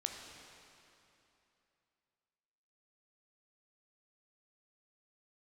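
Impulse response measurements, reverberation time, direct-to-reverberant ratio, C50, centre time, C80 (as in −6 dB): 2.9 s, 2.5 dB, 3.5 dB, 83 ms, 4.5 dB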